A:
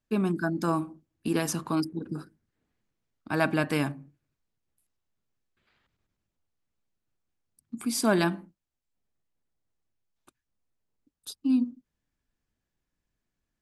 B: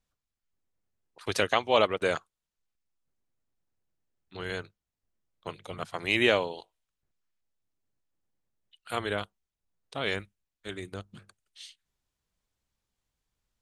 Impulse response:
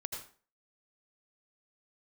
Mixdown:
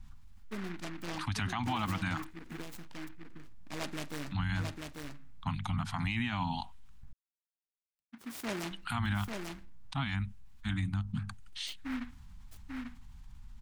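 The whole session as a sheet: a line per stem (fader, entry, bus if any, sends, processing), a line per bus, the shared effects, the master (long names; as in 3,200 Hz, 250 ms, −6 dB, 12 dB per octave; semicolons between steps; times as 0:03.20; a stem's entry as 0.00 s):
−14.0 dB, 0.40 s, no send, echo send −4 dB, downward expander −55 dBFS; short delay modulated by noise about 1,500 Hz, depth 0.21 ms
−1.0 dB, 0.00 s, muted 0:07.13–0:08.71, no send, no echo send, Chebyshev band-stop filter 250–820 Hz, order 3; spectral tilt −3 dB per octave; envelope flattener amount 50%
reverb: not used
echo: single-tap delay 843 ms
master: brickwall limiter −24 dBFS, peak gain reduction 11 dB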